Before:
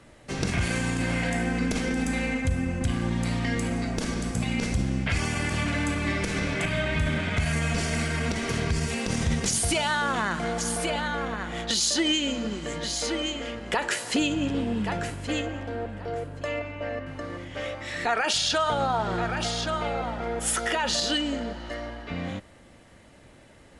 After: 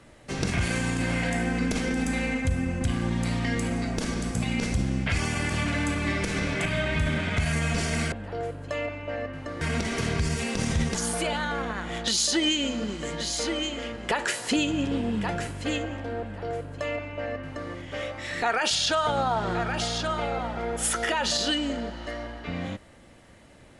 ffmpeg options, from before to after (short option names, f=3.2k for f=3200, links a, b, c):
-filter_complex "[0:a]asplit=4[a][b][c][d];[a]atrim=end=8.122[e];[b]atrim=start=15.848:end=17.342[f];[c]atrim=start=8.118:end=9.462[g];[d]atrim=start=10.578[h];[e][f]acrossfade=d=0.004:c1=hsin:c2=hsin[i];[i][g]acrossfade=d=0.004:c1=hsin:c2=hsin[j];[j][h]acrossfade=d=0.004:c1=hsin:c2=hsin"